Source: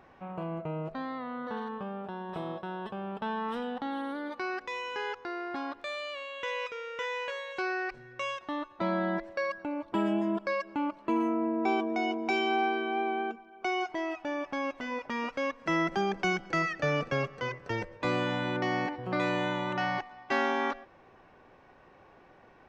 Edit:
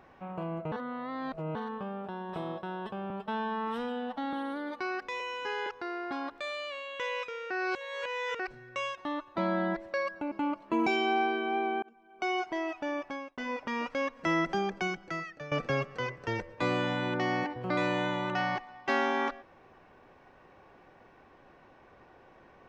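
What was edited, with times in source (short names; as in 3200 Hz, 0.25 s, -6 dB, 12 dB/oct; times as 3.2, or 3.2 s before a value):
0.72–1.55 reverse
3.1–3.92 stretch 1.5×
4.79–5.1 stretch 1.5×
6.94–7.83 reverse
9.75–10.68 cut
11.23–12.29 cut
13.25–13.72 fade in
14.39–14.8 fade out
15.83–16.94 fade out linear, to -17 dB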